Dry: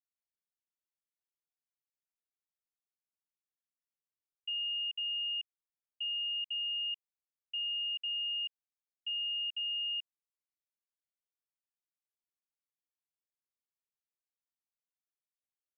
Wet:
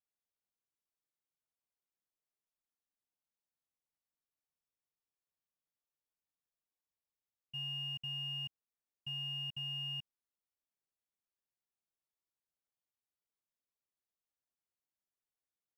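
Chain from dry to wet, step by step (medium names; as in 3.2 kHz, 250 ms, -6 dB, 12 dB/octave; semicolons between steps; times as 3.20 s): in parallel at -7 dB: sample-rate reducer 2.7 kHz, jitter 0%; on the sum: spectral freeze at 3.80 s, 3.73 s; trim -6 dB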